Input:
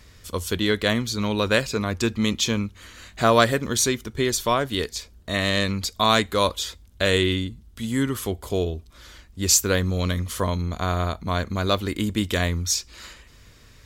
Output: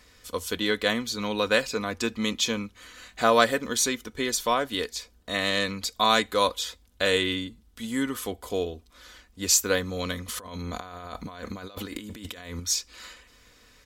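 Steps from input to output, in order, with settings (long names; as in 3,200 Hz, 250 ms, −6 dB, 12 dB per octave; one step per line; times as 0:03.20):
bass and treble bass −9 dB, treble −1 dB
comb filter 4 ms, depth 41%
0:10.28–0:12.60: compressor whose output falls as the input rises −36 dBFS, ratio −1
level −2.5 dB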